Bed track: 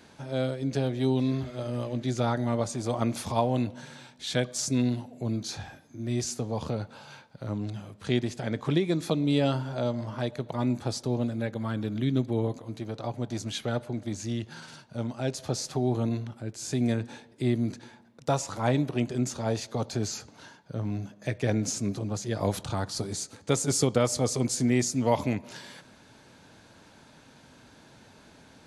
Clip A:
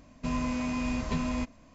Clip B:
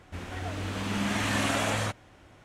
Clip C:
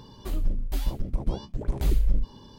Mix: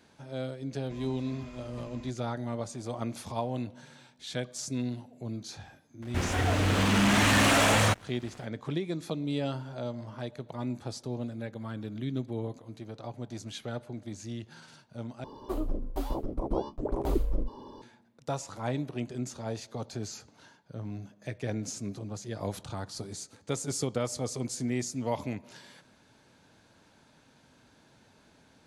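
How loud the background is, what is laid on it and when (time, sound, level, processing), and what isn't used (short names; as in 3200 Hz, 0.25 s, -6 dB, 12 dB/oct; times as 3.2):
bed track -7 dB
0.66 add A -16.5 dB
6.02 add B -2.5 dB + sample leveller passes 3
15.24 replace with C -7.5 dB + band shelf 570 Hz +14 dB 2.6 oct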